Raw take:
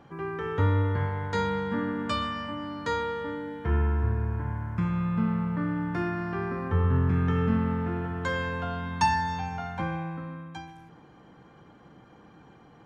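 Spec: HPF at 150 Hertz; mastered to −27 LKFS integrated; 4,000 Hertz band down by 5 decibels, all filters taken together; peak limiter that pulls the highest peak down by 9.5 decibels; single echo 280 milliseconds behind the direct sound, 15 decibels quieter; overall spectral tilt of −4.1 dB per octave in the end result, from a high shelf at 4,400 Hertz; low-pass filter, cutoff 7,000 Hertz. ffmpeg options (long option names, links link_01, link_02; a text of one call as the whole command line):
ffmpeg -i in.wav -af "highpass=150,lowpass=7000,equalizer=frequency=4000:width_type=o:gain=-5,highshelf=frequency=4400:gain=-3,alimiter=limit=-23dB:level=0:latency=1,aecho=1:1:280:0.178,volume=6dB" out.wav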